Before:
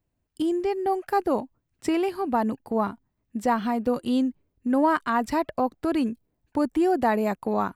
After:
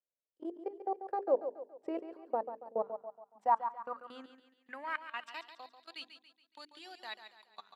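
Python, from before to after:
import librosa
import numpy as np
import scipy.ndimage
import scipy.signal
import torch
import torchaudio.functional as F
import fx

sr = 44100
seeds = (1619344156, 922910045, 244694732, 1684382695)

p1 = fx.level_steps(x, sr, step_db=23)
p2 = fx.low_shelf(p1, sr, hz=420.0, db=-9.5)
p3 = fx.hum_notches(p2, sr, base_hz=50, count=9)
p4 = p3 + fx.echo_feedback(p3, sr, ms=140, feedback_pct=43, wet_db=-10, dry=0)
p5 = fx.filter_sweep_bandpass(p4, sr, from_hz=530.0, to_hz=3700.0, start_s=2.8, end_s=5.65, q=4.6)
p6 = fx.peak_eq(p5, sr, hz=120.0, db=5.5, octaves=0.87)
y = F.gain(torch.from_numpy(p6), 5.5).numpy()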